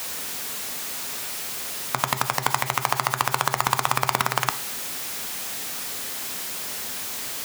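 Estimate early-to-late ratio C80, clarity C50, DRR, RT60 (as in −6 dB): 20.5 dB, 16.0 dB, 10.0 dB, 0.45 s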